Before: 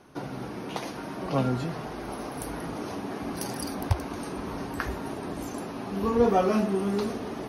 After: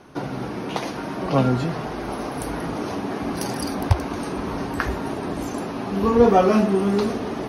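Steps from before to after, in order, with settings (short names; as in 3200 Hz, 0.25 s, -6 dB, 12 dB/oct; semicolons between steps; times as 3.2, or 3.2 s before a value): high shelf 10000 Hz -8.5 dB; gain +7 dB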